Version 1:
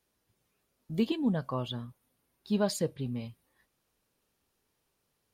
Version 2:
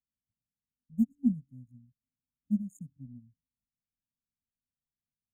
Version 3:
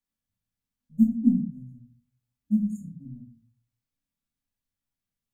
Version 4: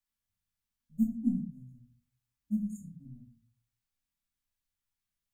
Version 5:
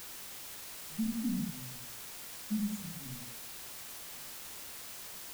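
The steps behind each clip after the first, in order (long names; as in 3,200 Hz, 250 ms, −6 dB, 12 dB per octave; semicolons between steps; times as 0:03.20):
adaptive Wiener filter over 41 samples; brick-wall band-stop 290–6,400 Hz; expander for the loud parts 2.5 to 1, over −38 dBFS; level +4.5 dB
rectangular room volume 200 cubic metres, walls furnished, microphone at 2.4 metres
octave-band graphic EQ 125/250/500 Hz −5/−7/−7 dB
brickwall limiter −29 dBFS, peak gain reduction 11 dB; bit-depth reduction 8 bits, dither triangular; level +2 dB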